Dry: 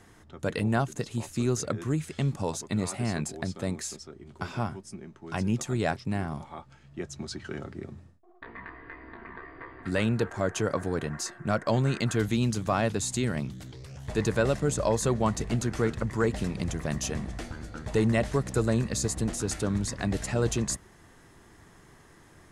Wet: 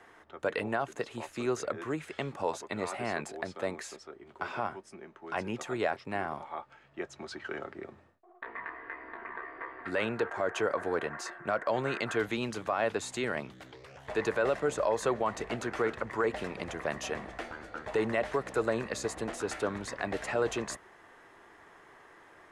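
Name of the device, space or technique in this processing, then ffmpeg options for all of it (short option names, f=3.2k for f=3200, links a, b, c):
DJ mixer with the lows and highs turned down: -filter_complex "[0:a]acrossover=split=380 3000:gain=0.1 1 0.178[a][b][c];[a][b][c]amix=inputs=3:normalize=0,alimiter=limit=-23dB:level=0:latency=1:release=43,volume=4dB"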